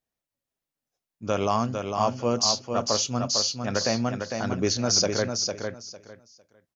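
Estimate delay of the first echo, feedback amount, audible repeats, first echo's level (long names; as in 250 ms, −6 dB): 453 ms, 20%, 3, −5.5 dB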